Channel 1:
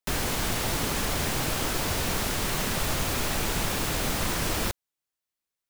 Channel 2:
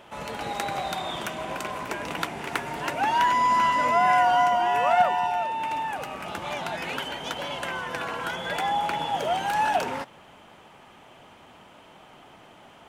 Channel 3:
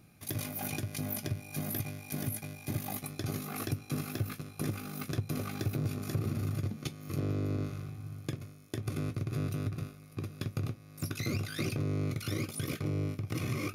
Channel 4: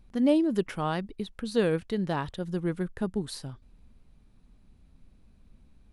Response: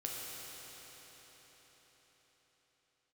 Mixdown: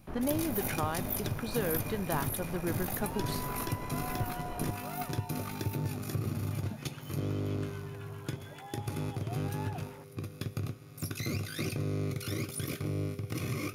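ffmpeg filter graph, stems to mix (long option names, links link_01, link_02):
-filter_complex "[0:a]lowpass=1000,aeval=exprs='clip(val(0),-1,0.02)':channel_layout=same,volume=-9dB[link_01];[1:a]acrossover=split=970[link_02][link_03];[link_02]aeval=exprs='val(0)*(1-0.7/2+0.7/2*cos(2*PI*7.4*n/s))':channel_layout=same[link_04];[link_03]aeval=exprs='val(0)*(1-0.7/2-0.7/2*cos(2*PI*7.4*n/s))':channel_layout=same[link_05];[link_04][link_05]amix=inputs=2:normalize=0,volume=-18dB[link_06];[2:a]highshelf=frequency=8200:gain=4.5,volume=-2dB,asplit=2[link_07][link_08];[link_08]volume=-13.5dB[link_09];[3:a]equalizer=frequency=1200:width=0.42:gain=9.5,acompressor=threshold=-23dB:ratio=6,volume=-6.5dB[link_10];[4:a]atrim=start_sample=2205[link_11];[link_09][link_11]afir=irnorm=-1:irlink=0[link_12];[link_01][link_06][link_07][link_10][link_12]amix=inputs=5:normalize=0"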